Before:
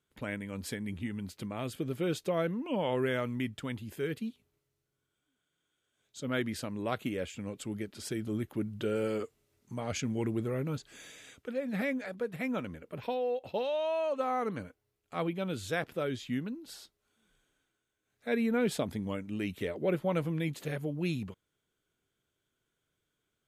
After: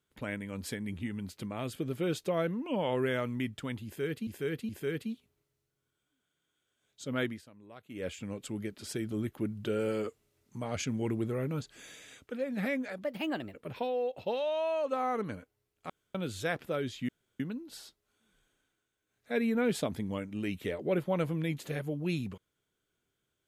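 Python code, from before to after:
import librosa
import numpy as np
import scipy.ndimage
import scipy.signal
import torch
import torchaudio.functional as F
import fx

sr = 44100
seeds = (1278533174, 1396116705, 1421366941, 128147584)

y = fx.edit(x, sr, fx.repeat(start_s=3.85, length_s=0.42, count=3),
    fx.fade_down_up(start_s=6.4, length_s=0.83, db=-18.0, fade_s=0.18),
    fx.speed_span(start_s=12.2, length_s=0.61, speed=1.23),
    fx.room_tone_fill(start_s=15.17, length_s=0.25),
    fx.insert_room_tone(at_s=16.36, length_s=0.31), tone=tone)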